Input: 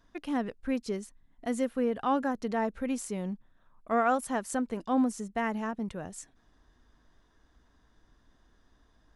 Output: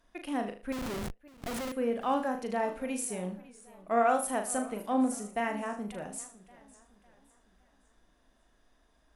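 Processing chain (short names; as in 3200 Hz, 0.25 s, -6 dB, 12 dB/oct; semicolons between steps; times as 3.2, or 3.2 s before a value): fifteen-band EQ 100 Hz -10 dB, 630 Hz +6 dB, 2500 Hz +6 dB, 10000 Hz +12 dB; on a send: flutter echo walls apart 6.6 m, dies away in 0.36 s; 0.72–1.72 on the sum: Schmitt trigger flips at -34 dBFS; warbling echo 0.558 s, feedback 41%, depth 165 cents, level -20 dB; gain -4.5 dB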